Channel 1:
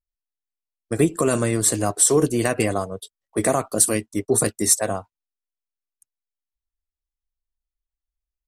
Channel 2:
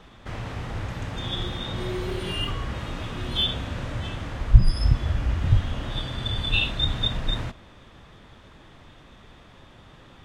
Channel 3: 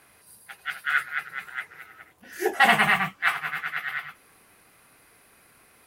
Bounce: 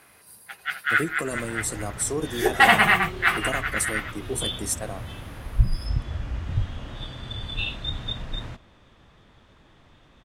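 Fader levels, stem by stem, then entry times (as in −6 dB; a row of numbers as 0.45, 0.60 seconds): −10.5, −6.0, +2.5 decibels; 0.00, 1.05, 0.00 seconds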